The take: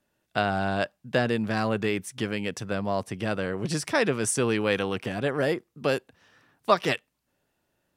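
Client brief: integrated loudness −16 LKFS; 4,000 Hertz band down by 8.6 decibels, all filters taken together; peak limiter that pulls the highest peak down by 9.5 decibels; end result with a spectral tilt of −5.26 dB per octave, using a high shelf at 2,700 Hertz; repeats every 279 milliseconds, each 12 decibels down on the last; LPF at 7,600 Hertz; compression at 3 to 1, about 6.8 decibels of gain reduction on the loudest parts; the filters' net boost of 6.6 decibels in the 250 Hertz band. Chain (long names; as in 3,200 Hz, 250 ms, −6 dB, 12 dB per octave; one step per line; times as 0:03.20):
low-pass filter 7,600 Hz
parametric band 250 Hz +8.5 dB
high-shelf EQ 2,700 Hz −3.5 dB
parametric band 4,000 Hz −9 dB
downward compressor 3 to 1, threshold −25 dBFS
brickwall limiter −22 dBFS
repeating echo 279 ms, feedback 25%, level −12 dB
level +17 dB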